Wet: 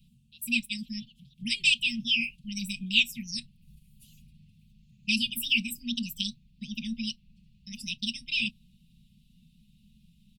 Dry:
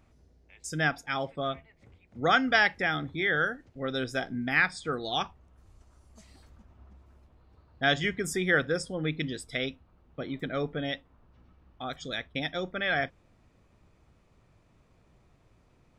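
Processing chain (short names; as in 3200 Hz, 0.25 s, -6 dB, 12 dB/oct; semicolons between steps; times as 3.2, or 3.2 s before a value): wide varispeed 1.54×; Chebyshev band-stop 230–2600 Hz, order 5; bell 6300 Hz -6.5 dB 0.71 oct; comb 5.2 ms, depth 86%; gain +2.5 dB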